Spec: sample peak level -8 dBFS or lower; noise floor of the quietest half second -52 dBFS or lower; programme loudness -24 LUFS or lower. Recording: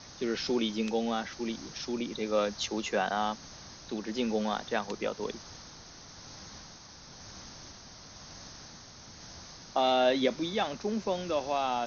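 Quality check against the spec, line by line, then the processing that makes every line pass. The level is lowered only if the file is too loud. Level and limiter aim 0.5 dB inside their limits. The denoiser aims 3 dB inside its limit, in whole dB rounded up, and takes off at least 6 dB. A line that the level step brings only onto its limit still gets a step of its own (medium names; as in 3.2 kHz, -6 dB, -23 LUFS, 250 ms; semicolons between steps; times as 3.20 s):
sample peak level -14.5 dBFS: pass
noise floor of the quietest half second -50 dBFS: fail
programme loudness -31.5 LUFS: pass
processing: noise reduction 6 dB, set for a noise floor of -50 dBFS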